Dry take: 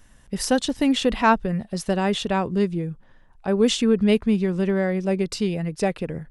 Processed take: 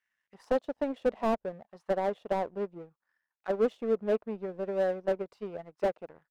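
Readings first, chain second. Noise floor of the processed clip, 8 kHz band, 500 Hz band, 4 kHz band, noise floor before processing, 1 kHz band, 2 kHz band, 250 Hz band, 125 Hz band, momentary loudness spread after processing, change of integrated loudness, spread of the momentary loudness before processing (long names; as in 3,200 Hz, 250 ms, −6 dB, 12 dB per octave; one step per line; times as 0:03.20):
below −85 dBFS, below −25 dB, −5.5 dB, below −20 dB, −53 dBFS, −9.5 dB, −14.5 dB, −16.0 dB, −20.5 dB, 12 LU, −9.5 dB, 9 LU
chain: envelope filter 610–2,100 Hz, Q 3, down, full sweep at −20.5 dBFS
power curve on the samples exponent 1.4
slew-rate limiting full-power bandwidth 25 Hz
level +4.5 dB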